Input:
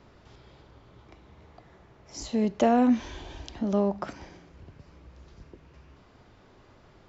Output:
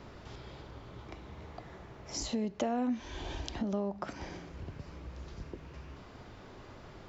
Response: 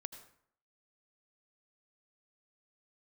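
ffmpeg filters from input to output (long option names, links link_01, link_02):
-af "acompressor=threshold=-41dB:ratio=3,volume=5.5dB"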